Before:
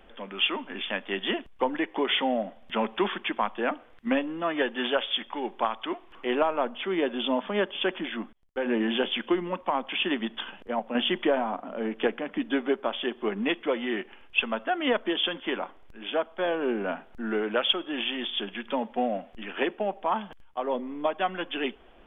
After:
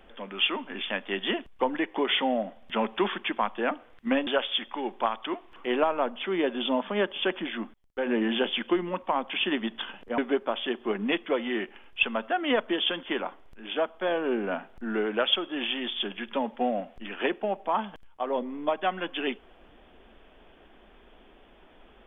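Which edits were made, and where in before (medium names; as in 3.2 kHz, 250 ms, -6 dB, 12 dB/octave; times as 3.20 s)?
4.27–4.86 s: delete
10.77–12.55 s: delete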